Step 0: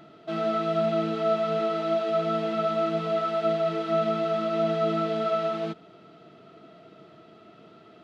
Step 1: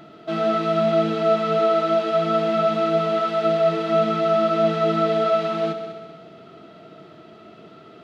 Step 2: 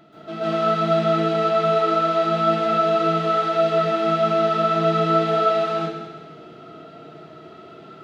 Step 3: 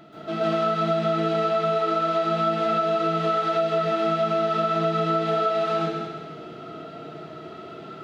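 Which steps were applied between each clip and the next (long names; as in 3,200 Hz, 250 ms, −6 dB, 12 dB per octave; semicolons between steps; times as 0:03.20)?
echo machine with several playback heads 65 ms, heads all three, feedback 53%, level −14.5 dB; level +5.5 dB
dense smooth reverb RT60 0.59 s, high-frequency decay 0.75×, pre-delay 120 ms, DRR −9 dB; level −7 dB
downward compressor, threshold −23 dBFS, peak gain reduction 9.5 dB; level +3 dB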